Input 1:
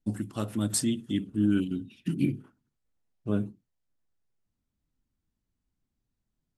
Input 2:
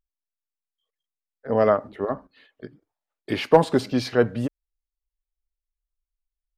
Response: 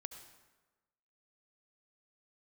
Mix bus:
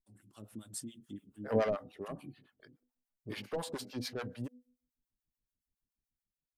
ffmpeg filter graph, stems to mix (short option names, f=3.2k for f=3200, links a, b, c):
-filter_complex "[0:a]acompressor=threshold=-31dB:ratio=6,volume=-16.5dB[a];[1:a]highshelf=f=6.7k:g=5.5,bandreject=f=248.1:t=h:w=4,bandreject=f=496.2:t=h:w=4,bandreject=f=744.3:t=h:w=4,asoftclip=type=tanh:threshold=-16.5dB,volume=-7.5dB,afade=t=out:st=1.58:d=0.21:silence=0.354813[b];[a][b]amix=inputs=2:normalize=0,acrossover=split=650[c][d];[c]aeval=exprs='val(0)*(1-1/2+1/2*cos(2*PI*7*n/s))':c=same[e];[d]aeval=exprs='val(0)*(1-1/2-1/2*cos(2*PI*7*n/s))':c=same[f];[e][f]amix=inputs=2:normalize=0,highshelf=f=7.3k:g=8,dynaudnorm=f=110:g=7:m=7dB"